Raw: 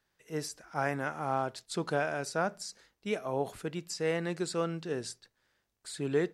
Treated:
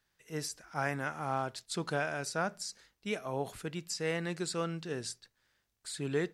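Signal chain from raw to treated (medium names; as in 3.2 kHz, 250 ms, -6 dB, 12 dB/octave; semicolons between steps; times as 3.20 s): peaking EQ 480 Hz -5.5 dB 2.7 oct; trim +1.5 dB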